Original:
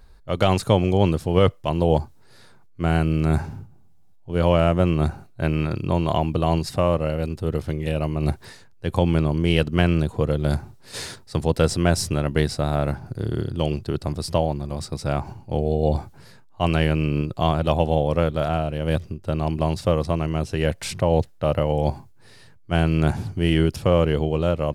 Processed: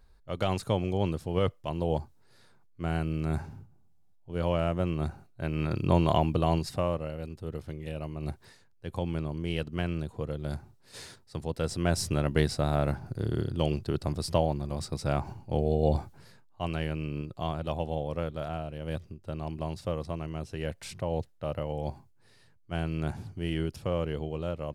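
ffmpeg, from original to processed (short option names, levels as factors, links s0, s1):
-af "volume=2.11,afade=t=in:st=5.51:d=0.39:silence=0.375837,afade=t=out:st=5.9:d=1.2:silence=0.281838,afade=t=in:st=11.6:d=0.6:silence=0.398107,afade=t=out:st=15.95:d=0.73:silence=0.421697"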